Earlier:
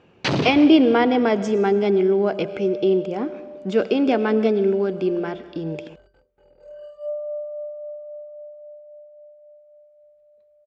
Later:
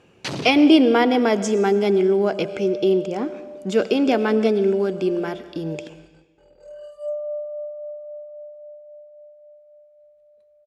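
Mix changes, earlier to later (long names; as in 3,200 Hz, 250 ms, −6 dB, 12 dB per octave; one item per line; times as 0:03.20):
first sound −8.5 dB
second sound: send on
master: remove high-frequency loss of the air 140 metres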